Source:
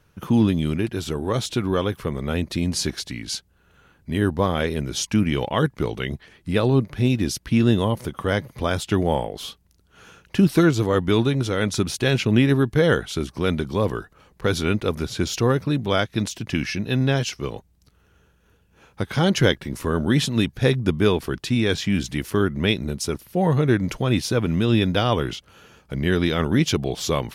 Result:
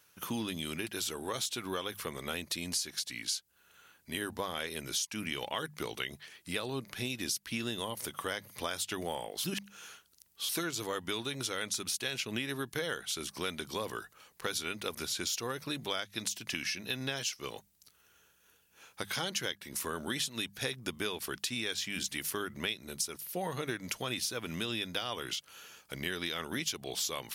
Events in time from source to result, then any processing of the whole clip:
0:09.44–0:10.49: reverse
whole clip: spectral tilt +4 dB per octave; mains-hum notches 50/100/150/200 Hz; downward compressor, threshold −26 dBFS; level −6 dB

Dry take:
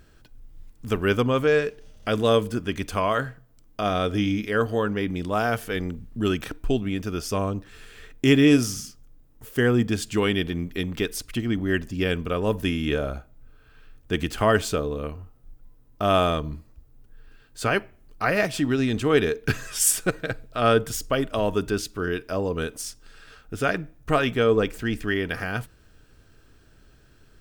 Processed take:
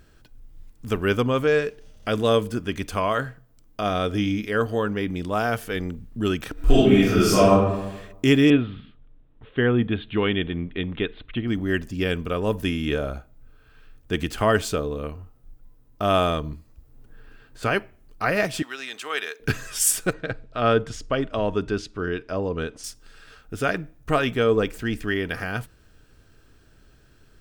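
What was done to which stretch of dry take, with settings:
0:06.53–0:07.51: thrown reverb, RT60 1 s, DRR −11 dB
0:08.50–0:11.48: Butterworth low-pass 3,800 Hz 96 dB per octave
0:16.53–0:17.63: multiband upward and downward compressor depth 70%
0:18.62–0:19.40: high-pass filter 1,000 Hz
0:20.13–0:22.84: high-frequency loss of the air 110 metres

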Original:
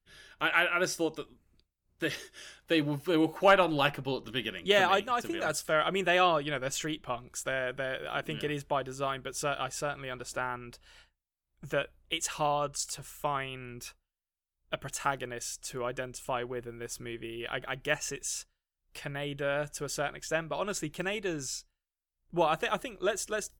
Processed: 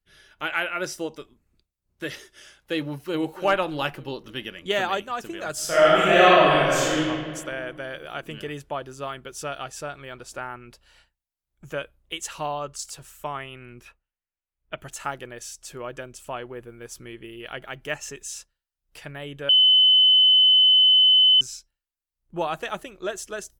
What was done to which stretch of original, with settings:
0:02.85–0:03.26: delay throw 290 ms, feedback 55%, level −13.5 dB
0:05.53–0:07.03: thrown reverb, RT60 2 s, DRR −10.5 dB
0:13.81–0:14.78: high shelf with overshoot 3,500 Hz −11.5 dB, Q 1.5
0:19.49–0:21.41: beep over 3,030 Hz −12.5 dBFS

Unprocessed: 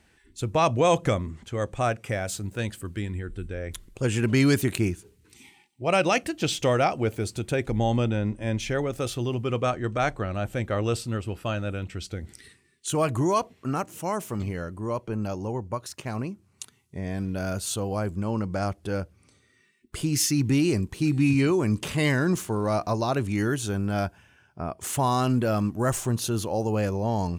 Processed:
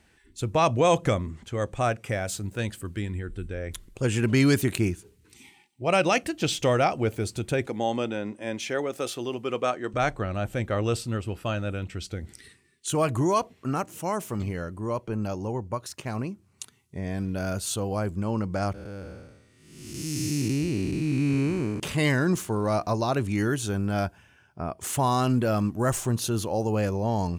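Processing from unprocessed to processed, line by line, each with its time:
0:07.67–0:09.94: high-pass filter 270 Hz
0:18.74–0:21.80: spectrum smeared in time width 460 ms

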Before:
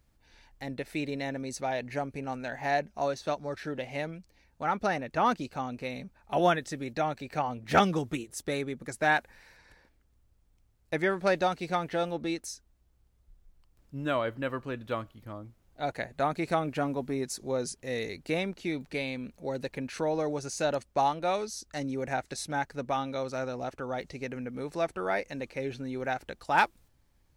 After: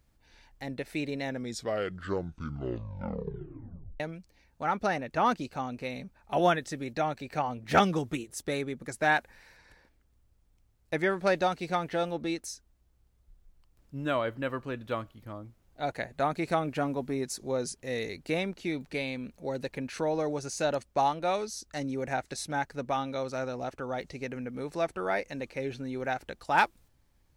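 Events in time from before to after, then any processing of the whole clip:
0:01.23: tape stop 2.77 s

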